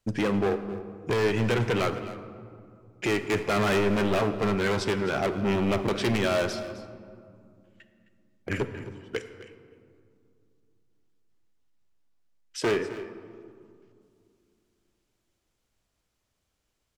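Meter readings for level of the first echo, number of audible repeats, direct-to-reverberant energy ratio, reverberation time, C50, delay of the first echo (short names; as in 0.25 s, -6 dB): -16.0 dB, 1, 9.0 dB, 2.4 s, 9.5 dB, 0.262 s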